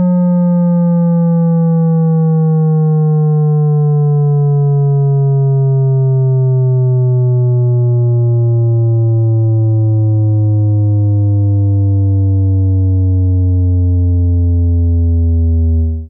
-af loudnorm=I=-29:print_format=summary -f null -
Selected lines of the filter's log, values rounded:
Input Integrated:    -12.0 LUFS
Input True Peak:      -9.2 dBTP
Input LRA:             1.1 LU
Input Threshold:     -22.0 LUFS